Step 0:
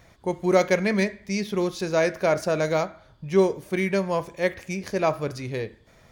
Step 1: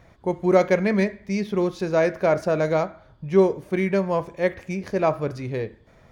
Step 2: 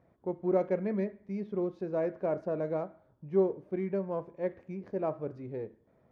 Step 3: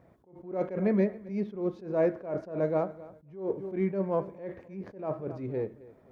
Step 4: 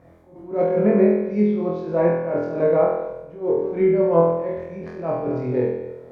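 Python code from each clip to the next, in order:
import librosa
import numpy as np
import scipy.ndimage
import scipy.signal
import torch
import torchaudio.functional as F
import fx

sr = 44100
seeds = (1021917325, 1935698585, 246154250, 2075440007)

y1 = fx.high_shelf(x, sr, hz=2900.0, db=-11.5)
y1 = F.gain(torch.from_numpy(y1), 2.5).numpy()
y2 = np.where(y1 < 0.0, 10.0 ** (-3.0 / 20.0) * y1, y1)
y2 = fx.bandpass_q(y2, sr, hz=330.0, q=0.67)
y2 = F.gain(torch.from_numpy(y2), -7.5).numpy()
y3 = fx.echo_feedback(y2, sr, ms=265, feedback_pct=30, wet_db=-20)
y3 = fx.attack_slew(y3, sr, db_per_s=120.0)
y3 = F.gain(torch.from_numpy(y3), 6.5).numpy()
y4 = fx.env_lowpass_down(y3, sr, base_hz=1900.0, full_db=-22.5)
y4 = fx.room_flutter(y4, sr, wall_m=4.1, rt60_s=0.9)
y4 = F.gain(torch.from_numpy(y4), 6.0).numpy()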